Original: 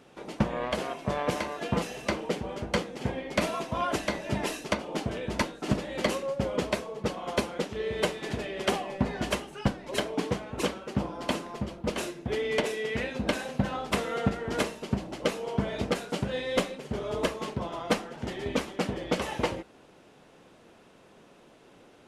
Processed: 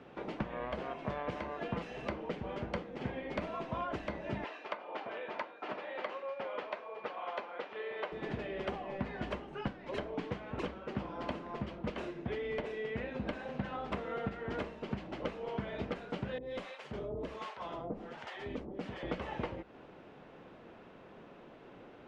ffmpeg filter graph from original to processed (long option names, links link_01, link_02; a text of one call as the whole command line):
ffmpeg -i in.wav -filter_complex "[0:a]asettb=1/sr,asplit=3[link_01][link_02][link_03];[link_01]atrim=end=4.444[link_04];[link_02]atrim=start=4.44:end=8.12,asetpts=PTS-STARTPTS,afade=type=in:duration=0.004:curve=qsin,afade=type=out:start_time=3.676:duration=0.004:curve=qsin,highpass=740,lowpass=4200,aeval=exprs='val(0)+0.002*sin(2*PI*2400*n/s)':channel_layout=same[link_05];[link_03]atrim=start=8.116[link_06];[link_04][link_05]acrossfade=duration=0.004:curve1=hsin:curve2=qsin[link_07];[link_07][link_06]acrossfade=duration=0.004:curve1=qsin:curve2=hsin,asettb=1/sr,asplit=3[link_08][link_09][link_10];[link_08]atrim=end=16.384[link_11];[link_09]atrim=start=16.38:end=19.03,asetpts=PTS-STARTPTS,afade=type=in:duration=0.004:curve=qsin,afade=type=out:start_time=2.646:duration=0.004:curve=qsin,highshelf=frequency=4200:gain=10.5,acompressor=threshold=-32dB:ratio=2:attack=3.2:release=140:knee=1:detection=peak,acrossover=split=700[link_12][link_13];[link_12]aeval=exprs='val(0)*(1-1/2+1/2*cos(2*PI*1.3*n/s))':channel_layout=same[link_14];[link_13]aeval=exprs='val(0)*(1-1/2-1/2*cos(2*PI*1.3*n/s))':channel_layout=same[link_15];[link_14][link_15]amix=inputs=2:normalize=0[link_16];[link_10]atrim=start=19.026[link_17];[link_11][link_16]acrossfade=duration=0.004:curve1=hsin:curve2=qsin[link_18];[link_18][link_17]acrossfade=duration=0.004:curve1=qsin:curve2=hsin,lowpass=2500,acrossover=split=100|1400[link_19][link_20][link_21];[link_19]acompressor=threshold=-49dB:ratio=4[link_22];[link_20]acompressor=threshold=-40dB:ratio=4[link_23];[link_21]acompressor=threshold=-51dB:ratio=4[link_24];[link_22][link_23][link_24]amix=inputs=3:normalize=0,volume=2dB" out.wav